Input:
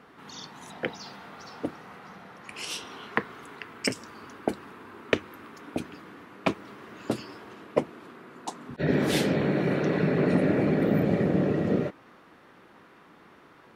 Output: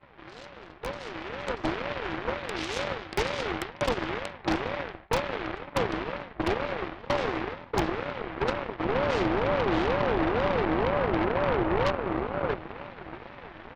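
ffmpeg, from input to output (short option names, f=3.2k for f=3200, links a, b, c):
-af "bandreject=f=500:w=12,areverse,acompressor=threshold=-36dB:ratio=16,areverse,highpass=180,equalizer=f=480:t=q:w=4:g=7,equalizer=f=1k:t=q:w=4:g=-5,equalizer=f=2.4k:t=q:w=4:g=-7,lowpass=f=2.8k:w=0.5412,lowpass=f=2.8k:w=1.3066,bandreject=f=60:t=h:w=6,bandreject=f=120:t=h:w=6,bandreject=f=180:t=h:w=6,bandreject=f=240:t=h:w=6,bandreject=f=300:t=h:w=6,bandreject=f=360:t=h:w=6,aecho=1:1:636|1272|1908|2544:0.562|0.163|0.0473|0.0137,aeval=exprs='0.0473*(cos(1*acos(clip(val(0)/0.0473,-1,1)))-cos(1*PI/2))+0.00133*(cos(3*acos(clip(val(0)/0.0473,-1,1)))-cos(3*PI/2))+0.0188*(cos(8*acos(clip(val(0)/0.0473,-1,1)))-cos(8*PI/2))':c=same,agate=range=-15dB:threshold=-55dB:ratio=16:detection=peak,dynaudnorm=f=200:g=13:m=10dB,aeval=exprs='val(0)*sin(2*PI*450*n/s+450*0.3/2.1*sin(2*PI*2.1*n/s))':c=same"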